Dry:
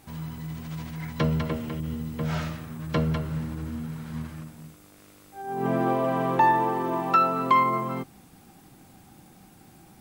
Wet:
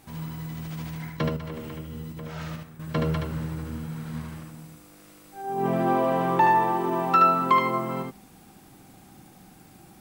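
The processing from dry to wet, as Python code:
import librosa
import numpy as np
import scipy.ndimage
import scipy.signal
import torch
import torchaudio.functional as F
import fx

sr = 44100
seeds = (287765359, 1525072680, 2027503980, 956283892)

y = fx.peak_eq(x, sr, hz=81.0, db=-2.5, octaves=1.0)
y = fx.level_steps(y, sr, step_db=12, at=(0.95, 3.01))
y = y + 10.0 ** (-3.5 / 20.0) * np.pad(y, (int(74 * sr / 1000.0), 0))[:len(y)]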